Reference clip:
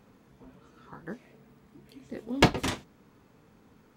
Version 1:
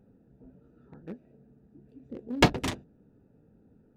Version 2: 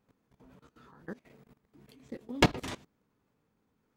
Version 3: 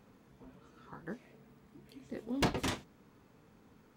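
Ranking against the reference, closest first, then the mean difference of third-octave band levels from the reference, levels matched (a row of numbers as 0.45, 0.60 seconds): 2, 3, 1; 2.5, 4.5, 5.5 decibels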